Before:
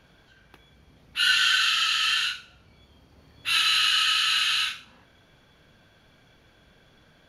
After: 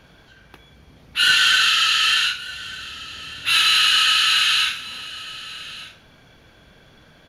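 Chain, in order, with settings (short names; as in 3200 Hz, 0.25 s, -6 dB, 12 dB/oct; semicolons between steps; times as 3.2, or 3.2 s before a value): soft clip -14.5 dBFS, distortion -20 dB; on a send: echo 1.193 s -17.5 dB; on the sum: gain +7 dB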